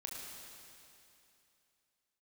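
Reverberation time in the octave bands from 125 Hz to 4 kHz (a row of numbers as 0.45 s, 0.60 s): 2.8 s, 2.8 s, 2.8 s, 2.8 s, 2.8 s, 2.8 s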